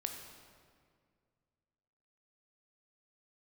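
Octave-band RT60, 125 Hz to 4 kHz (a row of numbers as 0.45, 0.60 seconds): 2.7, 2.4, 2.2, 1.9, 1.7, 1.4 seconds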